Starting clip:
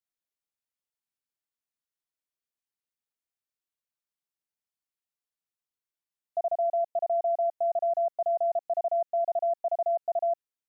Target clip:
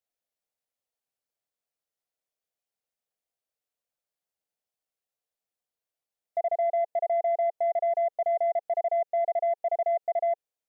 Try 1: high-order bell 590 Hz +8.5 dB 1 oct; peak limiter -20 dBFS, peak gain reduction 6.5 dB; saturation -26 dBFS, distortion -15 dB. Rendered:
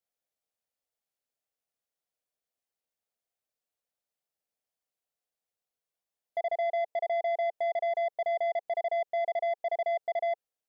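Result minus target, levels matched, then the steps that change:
saturation: distortion +11 dB
change: saturation -18.5 dBFS, distortion -26 dB

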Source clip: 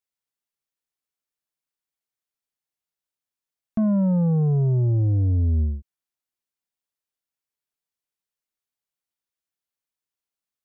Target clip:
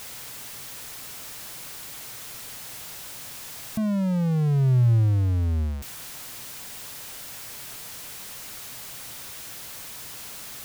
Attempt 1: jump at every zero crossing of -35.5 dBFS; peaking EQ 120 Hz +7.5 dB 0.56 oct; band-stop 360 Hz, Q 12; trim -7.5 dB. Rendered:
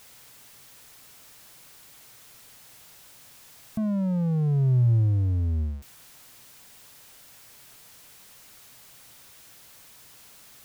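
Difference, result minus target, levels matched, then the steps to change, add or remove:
jump at every zero crossing: distortion -10 dB
change: jump at every zero crossing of -23.5 dBFS

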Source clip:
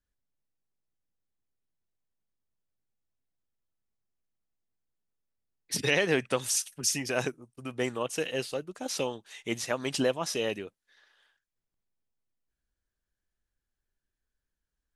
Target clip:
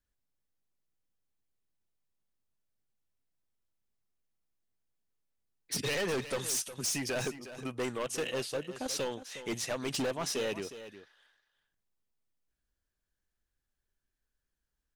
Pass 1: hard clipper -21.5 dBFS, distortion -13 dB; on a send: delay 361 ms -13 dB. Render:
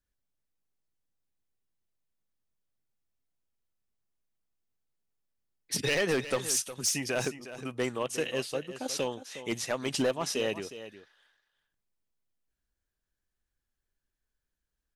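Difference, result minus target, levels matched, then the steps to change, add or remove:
hard clipper: distortion -7 dB
change: hard clipper -29.5 dBFS, distortion -6 dB

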